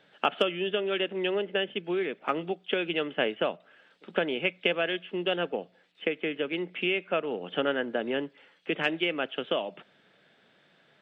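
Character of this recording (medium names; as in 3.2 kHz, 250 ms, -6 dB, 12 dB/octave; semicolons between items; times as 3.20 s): noise floor -64 dBFS; spectral tilt -2.0 dB/octave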